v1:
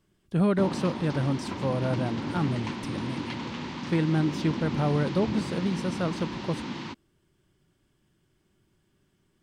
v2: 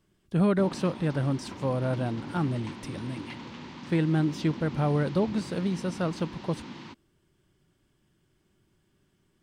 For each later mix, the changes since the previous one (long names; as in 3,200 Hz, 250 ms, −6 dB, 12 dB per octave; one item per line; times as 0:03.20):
background −7.0 dB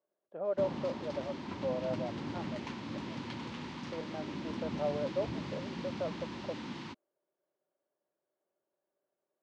speech: add four-pole ladder band-pass 630 Hz, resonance 70%